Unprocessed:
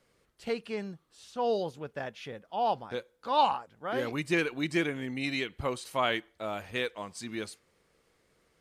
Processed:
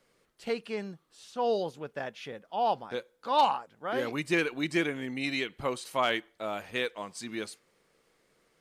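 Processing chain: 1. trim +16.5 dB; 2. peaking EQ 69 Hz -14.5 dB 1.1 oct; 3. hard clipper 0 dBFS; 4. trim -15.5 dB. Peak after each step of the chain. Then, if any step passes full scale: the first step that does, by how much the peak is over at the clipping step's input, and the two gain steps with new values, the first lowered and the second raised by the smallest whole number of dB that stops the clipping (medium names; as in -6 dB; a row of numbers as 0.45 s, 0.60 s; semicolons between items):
+3.0 dBFS, +3.0 dBFS, 0.0 dBFS, -15.5 dBFS; step 1, 3.0 dB; step 1 +13.5 dB, step 4 -12.5 dB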